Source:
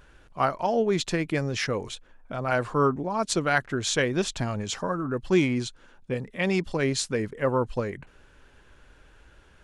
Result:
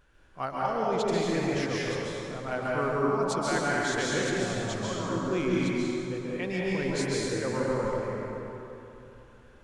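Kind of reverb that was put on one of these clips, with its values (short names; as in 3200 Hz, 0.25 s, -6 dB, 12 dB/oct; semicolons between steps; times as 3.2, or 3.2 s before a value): plate-style reverb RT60 3.2 s, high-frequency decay 0.6×, pre-delay 0.12 s, DRR -6 dB; gain -9.5 dB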